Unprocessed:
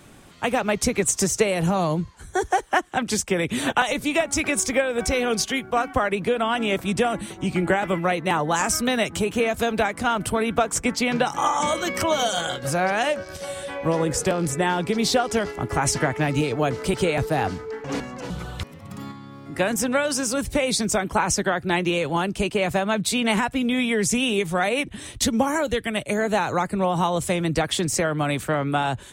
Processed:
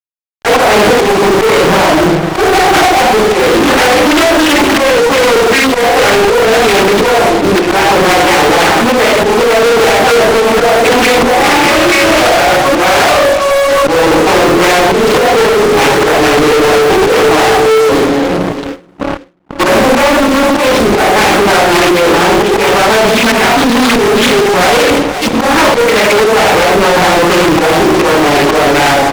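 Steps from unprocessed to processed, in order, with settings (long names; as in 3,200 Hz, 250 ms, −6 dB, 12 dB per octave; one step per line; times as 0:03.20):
lower of the sound and its delayed copy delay 0.47 ms
spectral tilt +3.5 dB per octave
noise reduction from a noise print of the clip's start 23 dB
loudspeaker in its box 290–2,100 Hz, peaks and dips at 320 Hz +7 dB, 460 Hz +9 dB, 780 Hz +8 dB, 1,800 Hz −7 dB
rectangular room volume 780 cubic metres, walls furnished, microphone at 9.7 metres
volume swells 245 ms
mains-hum notches 60/120/180/240/300/360/420/480 Hz
fuzz pedal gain 37 dB, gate −35 dBFS
repeating echo 482 ms, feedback 21%, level −14 dB
noise gate with hold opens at −17 dBFS
boost into a limiter +15 dB
highs frequency-modulated by the lows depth 0.65 ms
level −3.5 dB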